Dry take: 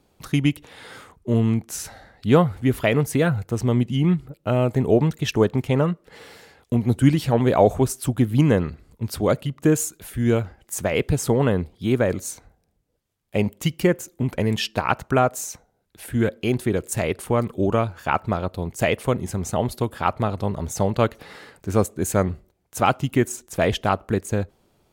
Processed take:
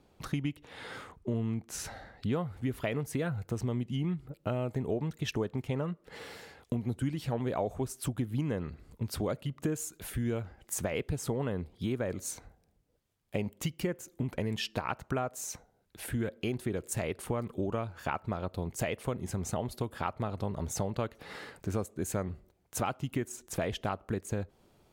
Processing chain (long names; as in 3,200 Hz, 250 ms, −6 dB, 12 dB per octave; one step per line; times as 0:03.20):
high-shelf EQ 6,200 Hz −9 dB, from 0:02.33 −2.5 dB
downward compressor 4 to 1, threshold −30 dBFS, peak gain reduction 17 dB
level −1.5 dB